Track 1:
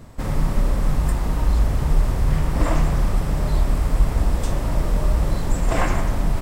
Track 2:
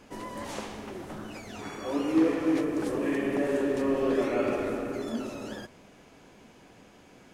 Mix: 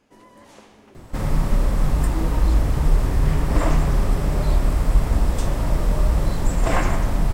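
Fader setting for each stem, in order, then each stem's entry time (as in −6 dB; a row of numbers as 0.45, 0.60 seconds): +0.5, −10.0 decibels; 0.95, 0.00 seconds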